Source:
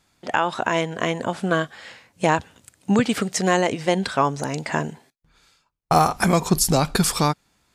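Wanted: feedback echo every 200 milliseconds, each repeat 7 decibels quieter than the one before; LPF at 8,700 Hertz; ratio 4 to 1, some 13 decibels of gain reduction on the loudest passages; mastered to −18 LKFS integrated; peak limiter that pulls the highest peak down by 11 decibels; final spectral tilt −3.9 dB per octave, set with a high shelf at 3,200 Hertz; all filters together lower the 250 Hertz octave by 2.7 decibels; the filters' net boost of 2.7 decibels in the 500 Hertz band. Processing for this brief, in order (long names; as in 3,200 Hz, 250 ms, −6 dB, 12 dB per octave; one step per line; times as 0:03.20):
low-pass filter 8,700 Hz
parametric band 250 Hz −5.5 dB
parametric band 500 Hz +4.5 dB
high-shelf EQ 3,200 Hz +4 dB
downward compressor 4 to 1, threshold −27 dBFS
brickwall limiter −21.5 dBFS
repeating echo 200 ms, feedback 45%, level −7 dB
level +15 dB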